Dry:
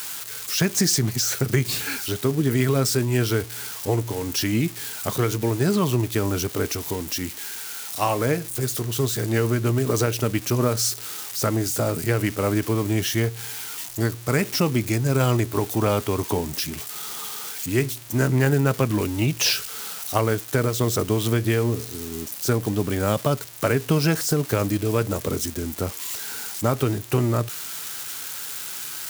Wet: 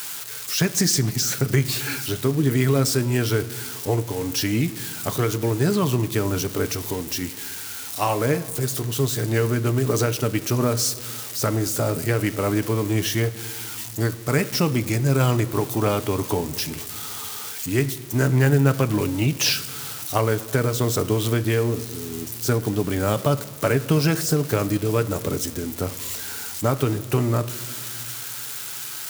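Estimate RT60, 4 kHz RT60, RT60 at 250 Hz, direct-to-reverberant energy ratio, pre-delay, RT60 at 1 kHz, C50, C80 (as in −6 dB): 2.1 s, 1.1 s, 2.8 s, 11.5 dB, 7 ms, 1.9 s, 16.5 dB, 17.5 dB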